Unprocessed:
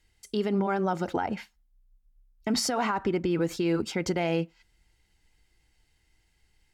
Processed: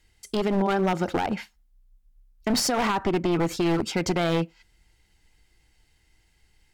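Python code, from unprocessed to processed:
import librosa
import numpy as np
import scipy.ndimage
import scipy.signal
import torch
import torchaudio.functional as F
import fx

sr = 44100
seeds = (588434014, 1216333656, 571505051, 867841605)

y = np.minimum(x, 2.0 * 10.0 ** (-24.5 / 20.0) - x)
y = F.gain(torch.from_numpy(y), 4.5).numpy()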